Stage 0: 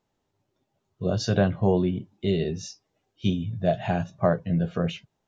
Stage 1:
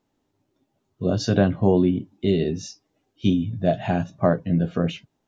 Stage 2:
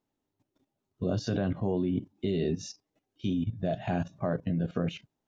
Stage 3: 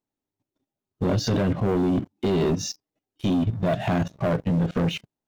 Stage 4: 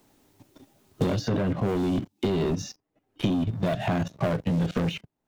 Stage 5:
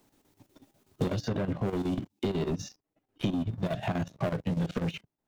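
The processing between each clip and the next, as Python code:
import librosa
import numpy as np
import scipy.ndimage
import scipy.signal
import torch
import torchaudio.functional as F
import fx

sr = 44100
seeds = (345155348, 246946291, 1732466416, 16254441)

y1 = fx.peak_eq(x, sr, hz=280.0, db=9.5, octaves=0.51)
y1 = y1 * librosa.db_to_amplitude(1.5)
y2 = fx.level_steps(y1, sr, step_db=14)
y3 = fx.leveller(y2, sr, passes=3)
y4 = fx.band_squash(y3, sr, depth_pct=100)
y4 = y4 * librosa.db_to_amplitude(-3.5)
y5 = fx.chopper(y4, sr, hz=8.1, depth_pct=65, duty_pct=75)
y5 = y5 * librosa.db_to_amplitude(-4.0)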